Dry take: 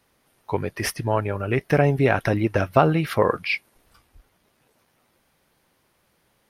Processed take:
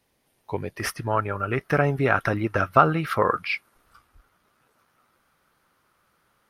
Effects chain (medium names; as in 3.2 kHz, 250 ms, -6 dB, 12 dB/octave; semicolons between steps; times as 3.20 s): peaking EQ 1.3 kHz -5.5 dB 0.55 oct, from 0.80 s +12.5 dB; trim -4 dB